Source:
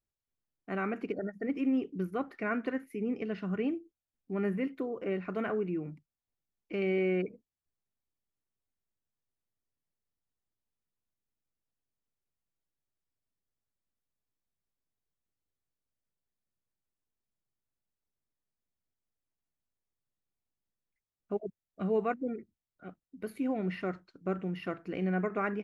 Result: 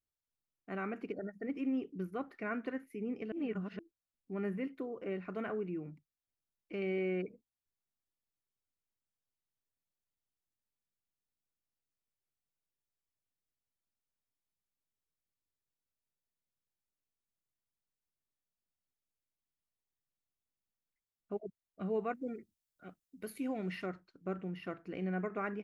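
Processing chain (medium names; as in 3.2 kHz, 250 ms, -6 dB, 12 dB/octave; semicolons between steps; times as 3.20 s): 3.32–3.79 s: reverse; 22.14–23.86 s: treble shelf 3.2 kHz +11.5 dB; trim -5.5 dB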